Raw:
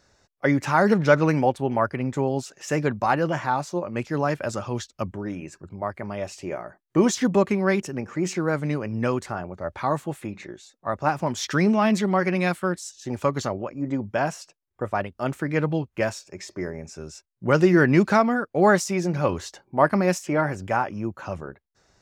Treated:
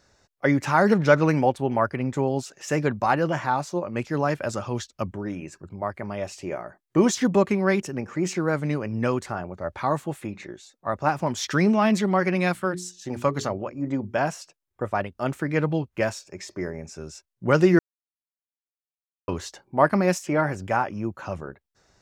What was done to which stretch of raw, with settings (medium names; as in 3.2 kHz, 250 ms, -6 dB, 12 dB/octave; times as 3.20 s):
12.53–14.18 s: hum notches 60/120/180/240/300/360/420 Hz
17.79–19.28 s: mute